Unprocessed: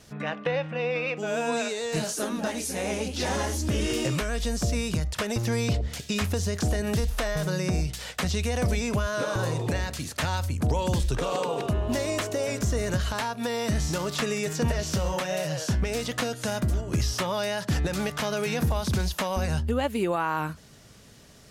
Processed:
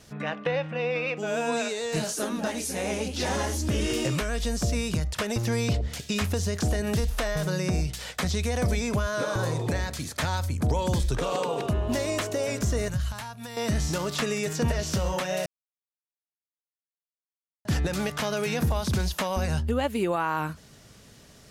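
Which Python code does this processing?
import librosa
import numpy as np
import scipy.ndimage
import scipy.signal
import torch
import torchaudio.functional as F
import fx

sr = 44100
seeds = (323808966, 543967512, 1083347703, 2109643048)

y = fx.notch(x, sr, hz=2800.0, q=12.0, at=(8.13, 11.18))
y = fx.curve_eq(y, sr, hz=(140.0, 290.0, 440.0, 780.0, 5200.0, 11000.0), db=(0, -14, -16, -9, -7, -2), at=(12.88, 13.57))
y = fx.edit(y, sr, fx.silence(start_s=15.46, length_s=2.19), tone=tone)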